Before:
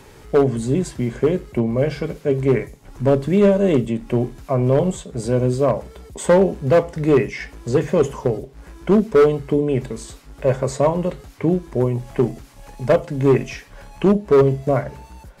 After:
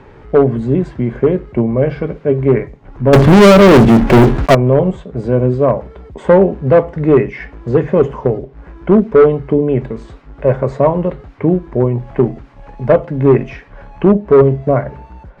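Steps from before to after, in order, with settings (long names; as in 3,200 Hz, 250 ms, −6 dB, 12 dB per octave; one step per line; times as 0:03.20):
low-pass filter 1,900 Hz 12 dB per octave
0:03.13–0:04.55: leveller curve on the samples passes 5
level +5.5 dB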